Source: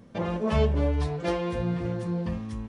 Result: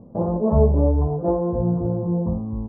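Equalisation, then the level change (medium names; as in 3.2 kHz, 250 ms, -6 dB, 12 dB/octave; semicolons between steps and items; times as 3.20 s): steep low-pass 930 Hz 36 dB/octave; +7.0 dB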